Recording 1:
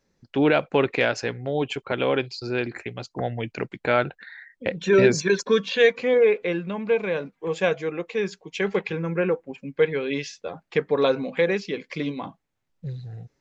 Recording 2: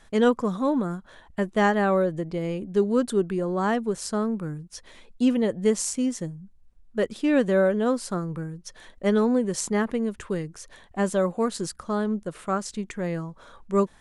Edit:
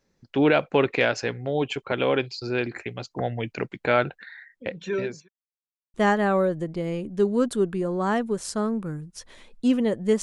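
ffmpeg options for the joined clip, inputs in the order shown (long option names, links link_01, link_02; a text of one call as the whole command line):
ffmpeg -i cue0.wav -i cue1.wav -filter_complex "[0:a]apad=whole_dur=10.22,atrim=end=10.22,asplit=2[link_01][link_02];[link_01]atrim=end=5.29,asetpts=PTS-STARTPTS,afade=type=out:start_time=4.22:duration=1.07[link_03];[link_02]atrim=start=5.29:end=5.94,asetpts=PTS-STARTPTS,volume=0[link_04];[1:a]atrim=start=1.51:end=5.79,asetpts=PTS-STARTPTS,afade=type=in:duration=0.004:curve=hsin[link_05];[link_03][link_04][link_05]concat=n=3:v=0:a=1" out.wav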